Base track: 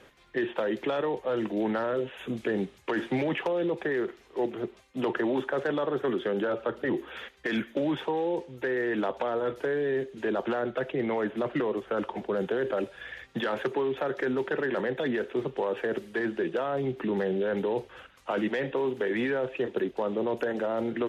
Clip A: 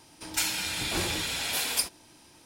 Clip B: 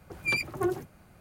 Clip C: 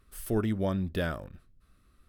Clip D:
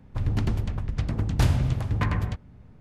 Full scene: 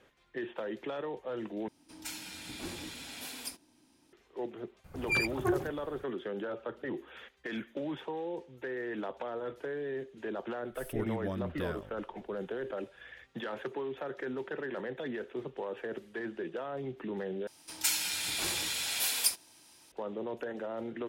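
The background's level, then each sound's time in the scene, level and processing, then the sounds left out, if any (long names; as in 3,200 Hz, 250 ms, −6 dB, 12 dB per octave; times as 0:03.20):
base track −9 dB
0:01.68: overwrite with A −14 dB + parametric band 260 Hz +12 dB 0.66 octaves
0:04.84: mix in B −2 dB + low-shelf EQ 68 Hz +10 dB
0:10.63: mix in C −7.5 dB
0:17.47: overwrite with A −6.5 dB + spectral tilt +2 dB per octave
not used: D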